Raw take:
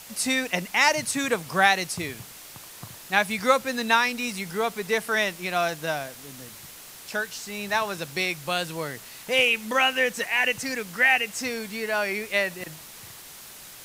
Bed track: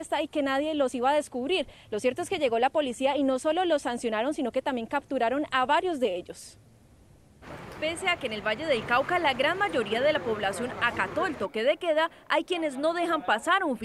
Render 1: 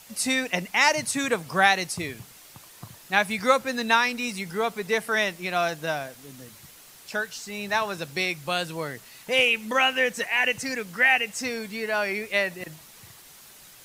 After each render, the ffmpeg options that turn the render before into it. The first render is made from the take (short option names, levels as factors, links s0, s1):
-af "afftdn=nr=6:nf=-44"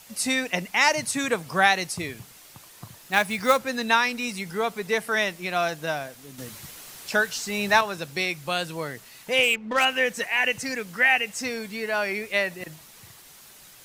-filter_complex "[0:a]asettb=1/sr,asplit=3[s0][s1][s2];[s0]atrim=end=2.984[s3];[s1]atrim=start=2.98:end=3.58,asetpts=PTS-STARTPTS,afade=t=in:d=0.004:c=qsin,afade=t=out:st=0.596:d=0.004:c=qsin,acrusher=bits=4:mode=log:mix=0:aa=0.000001[s4];[s2]atrim=start=3.576[s5];[s3][s4]acrossfade=d=0.004:c1=hsin:c2=qsin[s6];[s6][s5]acrossfade=d=0.004:c1=qsin:c2=hsin,asettb=1/sr,asplit=3[s7][s8][s9];[s7]atrim=end=6.384[s10];[s8]atrim=start=6.38:end=7.81,asetpts=PTS-STARTPTS,afade=t=in:d=0.004:c=qsin,afade=t=out:st=1.426:d=0.004:c=qsin,acontrast=61[s11];[s9]atrim=start=7.806[s12];[s10][s11]acrossfade=d=0.004:c1=hsin:c2=qsin[s13];[s13][s12]acrossfade=d=0.004:c1=qsin:c2=hsin,asettb=1/sr,asplit=3[s14][s15][s16];[s14]atrim=end=9.434[s17];[s15]atrim=start=9.43:end=9.85,asetpts=PTS-STARTPTS,afade=t=in:d=0.004:c=qsin,afade=t=out:st=0.416:d=0.004:c=qsin,adynamicsmooth=sensitivity=3:basefreq=1100[s18];[s16]atrim=start=9.846[s19];[s17][s18]acrossfade=d=0.004:c1=hsin:c2=qsin[s20];[s20][s19]acrossfade=d=0.004:c1=qsin:c2=hsin"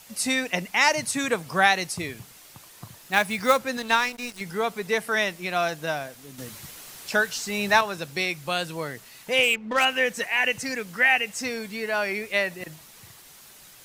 -filter_complex "[0:a]asettb=1/sr,asplit=3[s0][s1][s2];[s0]atrim=end=3.774[s3];[s1]atrim=start=3.77:end=4.41,asetpts=PTS-STARTPTS,afade=t=in:d=0.004:c=qsin,afade=t=out:st=0.636:d=0.004:c=qsin,aeval=exprs='sgn(val(0))*max(abs(val(0))-0.02,0)':c=same[s4];[s2]atrim=start=4.406[s5];[s3][s4]acrossfade=d=0.004:c1=hsin:c2=qsin[s6];[s6][s5]acrossfade=d=0.004:c1=qsin:c2=hsin"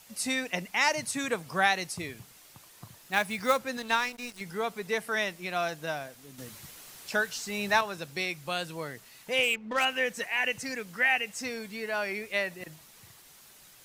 -af "volume=0.531"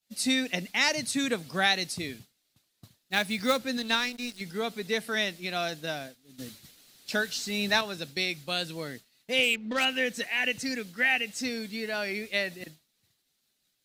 -af "equalizer=f=250:t=o:w=0.67:g=7,equalizer=f=1000:t=o:w=0.67:g=-7,equalizer=f=4000:t=o:w=0.67:g=8,agate=range=0.0224:threshold=0.0126:ratio=3:detection=peak"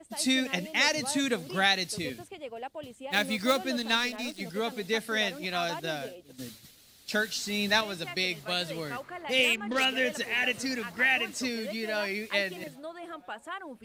-filter_complex "[1:a]volume=0.178[s0];[0:a][s0]amix=inputs=2:normalize=0"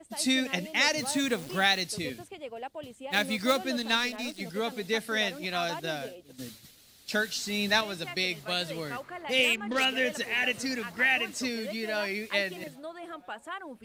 -filter_complex "[0:a]asettb=1/sr,asplit=3[s0][s1][s2];[s0]atrim=end=0.984[s3];[s1]atrim=start=0.98:end=1.82,asetpts=PTS-STARTPTS,afade=t=in:d=0.004:c=qsin,afade=t=out:st=0.836:d=0.004:c=qsin,acrusher=bits=8:dc=4:mix=0:aa=0.000001[s4];[s2]atrim=start=1.816[s5];[s3][s4]acrossfade=d=0.004:c1=hsin:c2=qsin[s6];[s6][s5]acrossfade=d=0.004:c1=qsin:c2=hsin"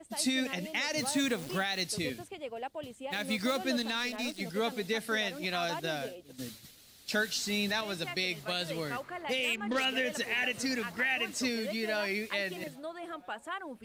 -af "alimiter=limit=0.0944:level=0:latency=1:release=101"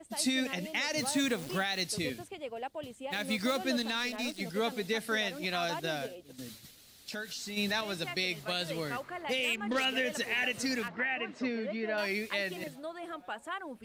-filter_complex "[0:a]asplit=3[s0][s1][s2];[s0]afade=t=out:st=6.06:d=0.02[s3];[s1]acompressor=threshold=0.01:ratio=2.5:attack=3.2:release=140:knee=1:detection=peak,afade=t=in:st=6.06:d=0.02,afade=t=out:st=7.56:d=0.02[s4];[s2]afade=t=in:st=7.56:d=0.02[s5];[s3][s4][s5]amix=inputs=3:normalize=0,asettb=1/sr,asplit=3[s6][s7][s8];[s6]atrim=end=10.884[s9];[s7]atrim=start=10.88:end=11.98,asetpts=PTS-STARTPTS,afade=t=in:d=0.004:c=qsin,afade=t=out:st=1.096:d=0.004:c=qsin,highpass=130,lowpass=2100[s10];[s8]atrim=start=11.976[s11];[s9][s10]acrossfade=d=0.004:c1=hsin:c2=qsin[s12];[s12][s11]acrossfade=d=0.004:c1=qsin:c2=hsin"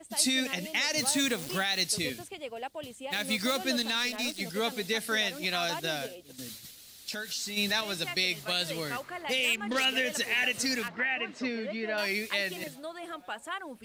-af "highshelf=f=2400:g=7.5"